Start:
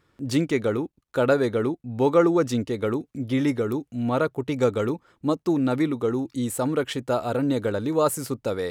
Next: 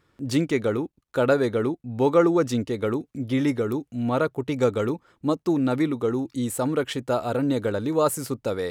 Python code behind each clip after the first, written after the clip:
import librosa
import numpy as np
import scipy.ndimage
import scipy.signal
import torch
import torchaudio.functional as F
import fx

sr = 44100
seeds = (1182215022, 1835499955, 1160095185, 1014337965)

y = x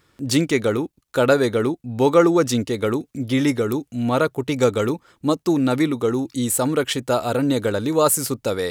y = fx.high_shelf(x, sr, hz=3000.0, db=8.5)
y = y * librosa.db_to_amplitude(3.5)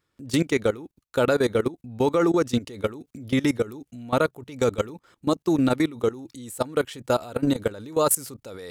y = fx.level_steps(x, sr, step_db=19)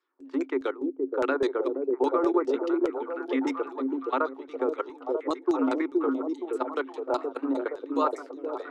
y = scipy.signal.sosfilt(scipy.signal.cheby1(6, 9, 260.0, 'highpass', fs=sr, output='sos'), x)
y = fx.filter_lfo_lowpass(y, sr, shape='saw_down', hz=4.9, low_hz=580.0, high_hz=6600.0, q=1.3)
y = fx.echo_stepped(y, sr, ms=470, hz=360.0, octaves=0.7, feedback_pct=70, wet_db=-1.0)